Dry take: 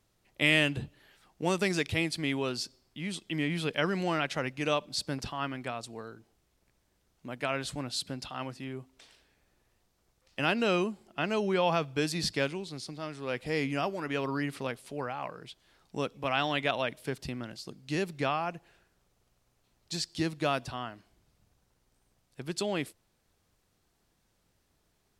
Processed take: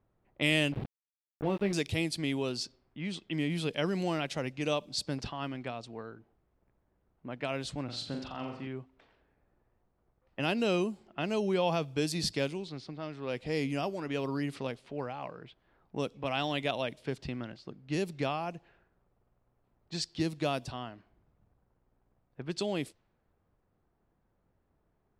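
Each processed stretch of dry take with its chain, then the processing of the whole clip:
0:00.72–0:01.73: double-tracking delay 20 ms −9 dB + bit-depth reduction 6 bits, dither none + high-frequency loss of the air 470 metres
0:07.84–0:08.67: high-shelf EQ 3,000 Hz −5 dB + flutter between parallel walls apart 7.3 metres, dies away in 0.54 s
whole clip: low-pass that shuts in the quiet parts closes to 1,200 Hz, open at −27.5 dBFS; dynamic equaliser 1,500 Hz, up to −8 dB, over −45 dBFS, Q 0.95

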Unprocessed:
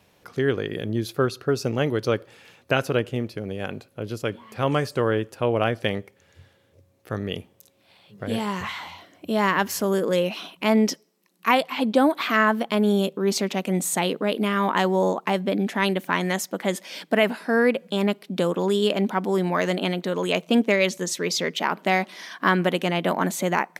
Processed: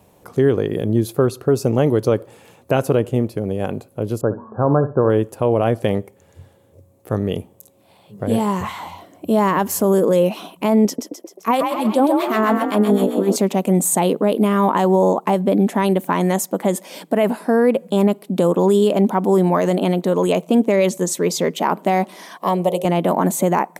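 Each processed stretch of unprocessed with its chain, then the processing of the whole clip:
0:04.21–0:05.10: linear-phase brick-wall low-pass 1,700 Hz + flutter between parallel walls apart 10.8 metres, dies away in 0.27 s
0:10.85–0:13.36: echo with shifted repeats 130 ms, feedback 54%, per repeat +43 Hz, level −6 dB + two-band tremolo in antiphase 7.7 Hz, crossover 1,100 Hz
0:22.37–0:22.85: phaser with its sweep stopped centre 640 Hz, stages 4 + hum removal 53.87 Hz, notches 13
whole clip: flat-topped bell 2,800 Hz −10.5 dB 2.4 octaves; brickwall limiter −14.5 dBFS; level +8.5 dB

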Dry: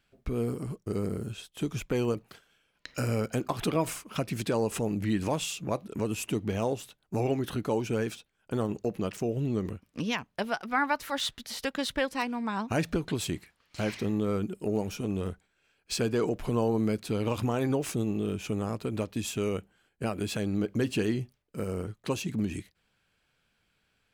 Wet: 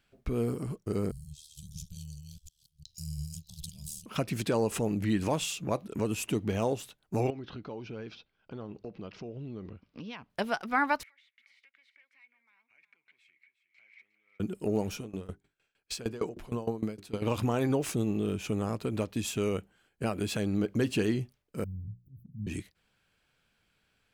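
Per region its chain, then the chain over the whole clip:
0:01.11–0:04.06: delay that plays each chunk backwards 344 ms, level −4 dB + inverse Chebyshev band-stop filter 210–2,200 Hz + ring modulation 38 Hz
0:07.30–0:10.30: Butterworth low-pass 5,300 Hz 48 dB per octave + notch filter 1,800 Hz, Q 13 + downward compressor 2 to 1, threshold −47 dBFS
0:11.03–0:14.40: downward compressor 16 to 1, threshold −38 dBFS + resonant band-pass 2,200 Hz, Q 16 + single-tap delay 360 ms −12.5 dB
0:14.98–0:17.22: mains-hum notches 50/100/150/200/250/300/350/400 Hz + tremolo with a ramp in dB decaying 6.5 Hz, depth 20 dB
0:21.64–0:22.47: inverse Chebyshev band-stop filter 830–6,400 Hz, stop band 80 dB + volume swells 170 ms + mains-hum notches 60/120/180/240/300/360/420/480 Hz
whole clip: no processing

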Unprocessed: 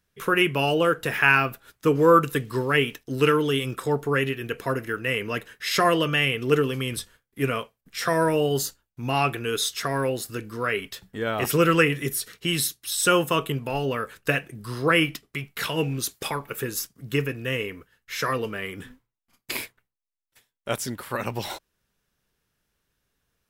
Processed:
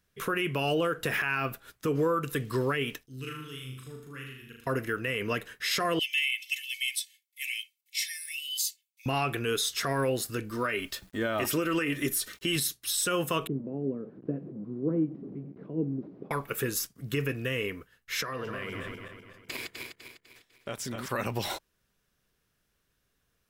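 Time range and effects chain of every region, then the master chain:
0:03.06–0:04.67: guitar amp tone stack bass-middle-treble 6-0-2 + flutter between parallel walls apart 6.6 metres, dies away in 0.72 s
0:05.99–0:09.06: Butterworth high-pass 2,000 Hz 96 dB per octave + comb filter 2.3 ms, depth 81%
0:10.50–0:12.56: comb filter 3.3 ms, depth 49% + bit-depth reduction 10 bits, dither none
0:13.47–0:16.31: linear delta modulator 32 kbit/s, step −29 dBFS + flat-topped band-pass 250 Hz, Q 1.2
0:18.21–0:21.09: feedback delay that plays each chunk backwards 125 ms, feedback 64%, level −8 dB + parametric band 12,000 Hz −8 dB 1 octave + downward compressor, threshold −32 dBFS
whole clip: notch filter 880 Hz, Q 15; downward compressor, threshold −21 dBFS; brickwall limiter −19 dBFS

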